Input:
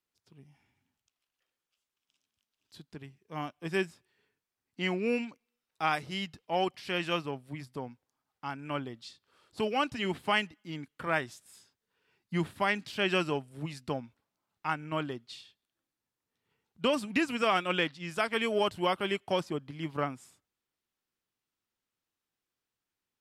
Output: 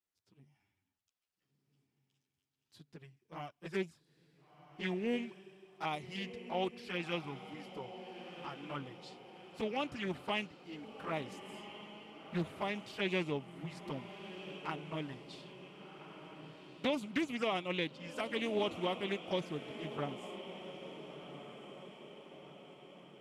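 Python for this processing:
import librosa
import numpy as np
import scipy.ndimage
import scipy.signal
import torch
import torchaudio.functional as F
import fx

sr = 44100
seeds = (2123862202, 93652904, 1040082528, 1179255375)

y = fx.env_flanger(x, sr, rest_ms=10.8, full_db=-27.0)
y = fx.echo_diffused(y, sr, ms=1434, feedback_pct=52, wet_db=-10.5)
y = fx.doppler_dist(y, sr, depth_ms=0.3)
y = y * 10.0 ** (-4.5 / 20.0)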